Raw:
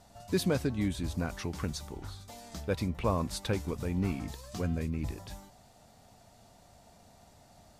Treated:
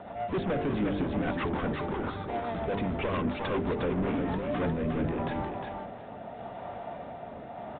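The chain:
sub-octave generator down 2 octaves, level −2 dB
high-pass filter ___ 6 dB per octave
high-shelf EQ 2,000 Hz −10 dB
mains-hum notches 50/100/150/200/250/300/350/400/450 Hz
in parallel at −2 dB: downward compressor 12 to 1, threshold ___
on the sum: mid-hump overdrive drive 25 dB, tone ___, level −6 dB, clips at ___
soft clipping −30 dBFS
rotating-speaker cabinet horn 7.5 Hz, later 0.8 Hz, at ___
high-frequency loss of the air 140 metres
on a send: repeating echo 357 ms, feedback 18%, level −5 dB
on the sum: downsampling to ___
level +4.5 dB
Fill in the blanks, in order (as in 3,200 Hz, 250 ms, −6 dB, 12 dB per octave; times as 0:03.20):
83 Hz, −40 dBFS, 1,500 Hz, −16 dBFS, 0:03.89, 8,000 Hz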